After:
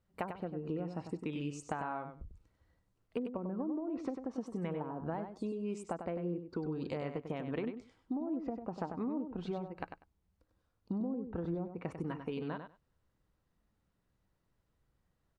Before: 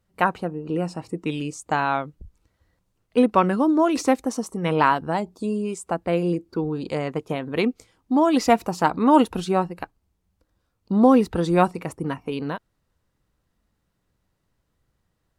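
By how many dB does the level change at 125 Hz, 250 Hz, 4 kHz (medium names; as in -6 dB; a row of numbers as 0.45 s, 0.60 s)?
-12.5 dB, -16.0 dB, -21.0 dB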